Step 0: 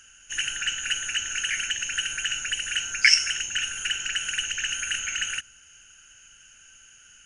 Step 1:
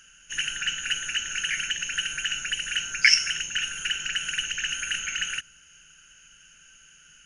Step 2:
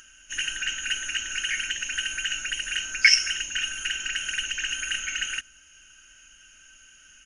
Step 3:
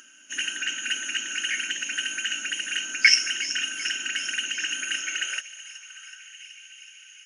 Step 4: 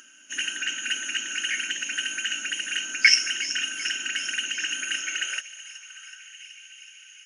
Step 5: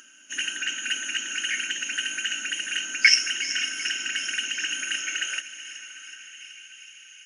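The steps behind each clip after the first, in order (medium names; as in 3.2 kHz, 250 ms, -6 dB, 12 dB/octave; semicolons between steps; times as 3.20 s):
graphic EQ with 31 bands 100 Hz -11 dB, 160 Hz +10 dB, 800 Hz -6 dB, 8 kHz -9 dB
comb 3.2 ms, depth 63%; upward compressor, threshold -48 dBFS; trim -1 dB
feedback echo behind a high-pass 374 ms, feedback 65%, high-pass 2.7 kHz, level -12.5 dB; high-pass sweep 260 Hz -> 2.2 kHz, 4.90–6.43 s
no audible change
echo that smears into a reverb 501 ms, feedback 53%, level -16 dB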